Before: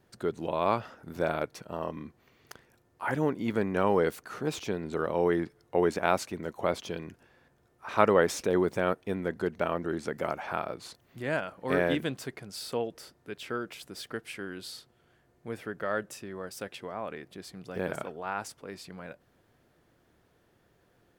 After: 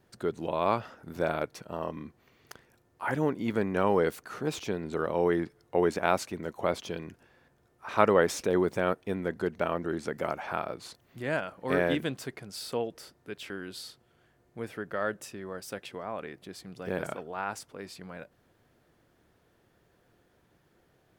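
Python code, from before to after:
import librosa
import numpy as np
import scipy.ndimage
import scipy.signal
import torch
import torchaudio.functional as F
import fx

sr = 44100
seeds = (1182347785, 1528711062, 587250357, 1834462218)

y = fx.edit(x, sr, fx.cut(start_s=13.5, length_s=0.89), tone=tone)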